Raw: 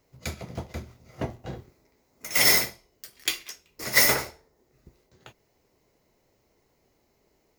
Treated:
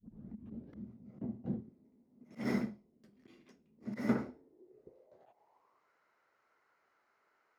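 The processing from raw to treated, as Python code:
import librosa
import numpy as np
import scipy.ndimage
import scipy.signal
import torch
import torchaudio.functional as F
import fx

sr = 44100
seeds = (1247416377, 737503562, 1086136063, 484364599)

y = fx.tape_start_head(x, sr, length_s=0.86)
y = fx.auto_swell(y, sr, attack_ms=152.0)
y = fx.dynamic_eq(y, sr, hz=1400.0, q=2.1, threshold_db=-45.0, ratio=4.0, max_db=7)
y = fx.filter_sweep_bandpass(y, sr, from_hz=220.0, to_hz=1400.0, start_s=4.18, end_s=5.91, q=5.9)
y = y * librosa.db_to_amplitude(11.5)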